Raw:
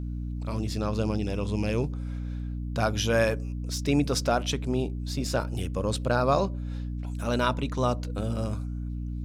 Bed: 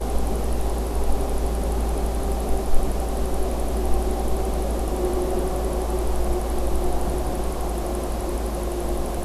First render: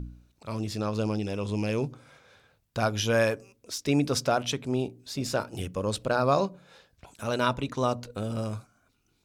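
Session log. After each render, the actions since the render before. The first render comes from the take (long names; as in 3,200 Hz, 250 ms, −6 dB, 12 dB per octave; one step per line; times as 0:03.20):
hum removal 60 Hz, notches 5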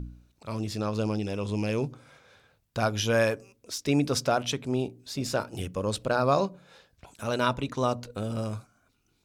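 no processing that can be heard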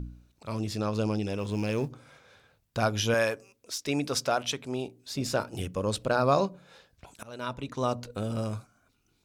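0:01.38–0:01.90: mu-law and A-law mismatch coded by A
0:03.14–0:05.10: low-shelf EQ 360 Hz −8.5 dB
0:07.23–0:08.04: fade in, from −21.5 dB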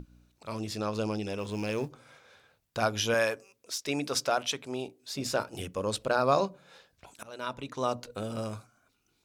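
low-shelf EQ 220 Hz −7.5 dB
mains-hum notches 60/120/180/240/300 Hz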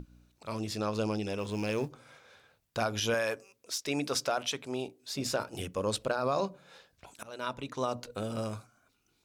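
brickwall limiter −19.5 dBFS, peak gain reduction 7.5 dB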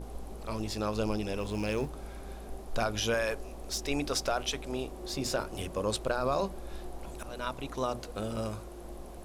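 mix in bed −19 dB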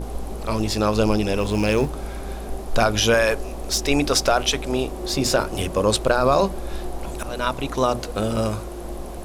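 level +12 dB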